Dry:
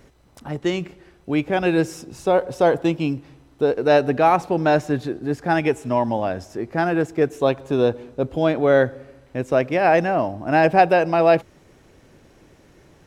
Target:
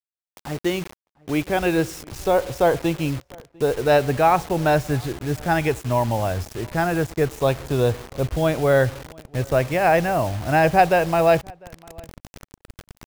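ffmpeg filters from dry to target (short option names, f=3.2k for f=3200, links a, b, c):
-filter_complex "[0:a]asubboost=boost=9:cutoff=83,acrusher=bits=5:mix=0:aa=0.000001,asplit=2[a][b];[b]adelay=699.7,volume=-26dB,highshelf=f=4k:g=-15.7[c];[a][c]amix=inputs=2:normalize=0"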